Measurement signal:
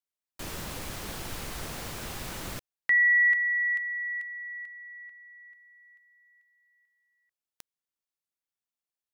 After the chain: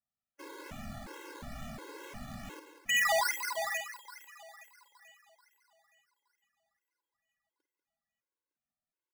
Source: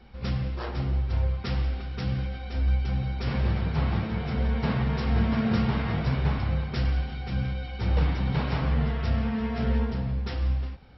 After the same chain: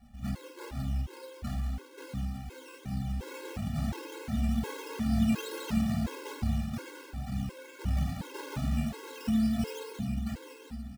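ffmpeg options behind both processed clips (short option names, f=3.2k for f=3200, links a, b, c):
-filter_complex "[0:a]equalizer=f=230:w=3.5:g=8,asplit=2[a][b];[b]aecho=0:1:909:0.211[c];[a][c]amix=inputs=2:normalize=0,acrusher=samples=13:mix=1:aa=0.000001:lfo=1:lforange=7.8:lforate=2.3,asplit=2[d][e];[e]aecho=0:1:50|192:0.316|0.316[f];[d][f]amix=inputs=2:normalize=0,afftfilt=real='re*gt(sin(2*PI*1.4*pts/sr)*(1-2*mod(floor(b*sr/1024/280),2)),0)':imag='im*gt(sin(2*PI*1.4*pts/sr)*(1-2*mod(floor(b*sr/1024/280),2)),0)':win_size=1024:overlap=0.75,volume=-6dB"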